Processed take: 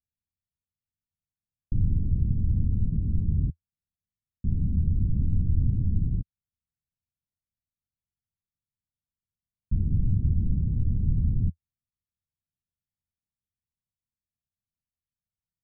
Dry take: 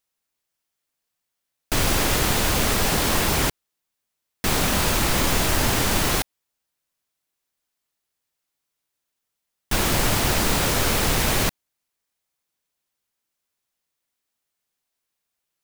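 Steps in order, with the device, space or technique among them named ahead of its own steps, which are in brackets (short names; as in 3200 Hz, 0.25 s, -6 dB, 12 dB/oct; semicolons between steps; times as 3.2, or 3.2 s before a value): the neighbour's flat through the wall (LPF 190 Hz 24 dB/oct; bell 83 Hz +6.5 dB 0.67 oct)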